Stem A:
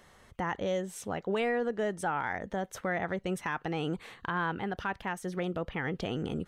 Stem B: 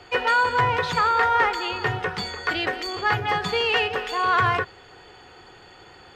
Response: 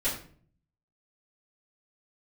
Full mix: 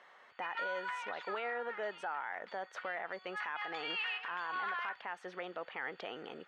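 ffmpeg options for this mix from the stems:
-filter_complex "[0:a]alimiter=level_in=2dB:limit=-24dB:level=0:latency=1:release=223,volume=-2dB,volume=2.5dB[link_01];[1:a]highpass=1400,adelay=300,volume=1dB,afade=type=out:start_time=0.92:duration=0.57:silence=0.354813,afade=type=in:start_time=3.21:duration=0.66:silence=0.237137[link_02];[link_01][link_02]amix=inputs=2:normalize=0,highpass=710,lowpass=2600,alimiter=level_in=5.5dB:limit=-24dB:level=0:latency=1:release=49,volume=-5.5dB"

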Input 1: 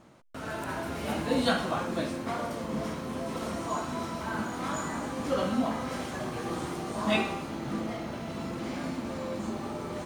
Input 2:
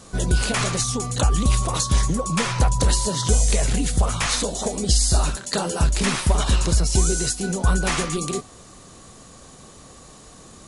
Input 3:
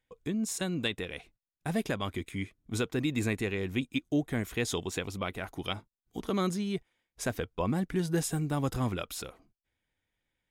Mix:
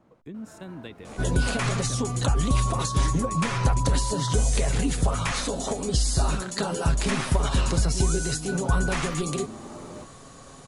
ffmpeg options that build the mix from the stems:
ffmpeg -i stem1.wav -i stem2.wav -i stem3.wav -filter_complex "[0:a]volume=-4dB[link_01];[1:a]tiltshelf=frequency=820:gain=-4,aecho=1:1:7.3:0.37,adelay=1050,volume=2dB[link_02];[2:a]volume=-6.5dB,asplit=2[link_03][link_04];[link_04]apad=whole_len=443510[link_05];[link_01][link_05]sidechaincompress=threshold=-44dB:ratio=8:attack=35:release=810[link_06];[link_06][link_02][link_03]amix=inputs=3:normalize=0,highshelf=frequency=2100:gain=-11.5,acrossover=split=260[link_07][link_08];[link_08]acompressor=threshold=-27dB:ratio=3[link_09];[link_07][link_09]amix=inputs=2:normalize=0" out.wav

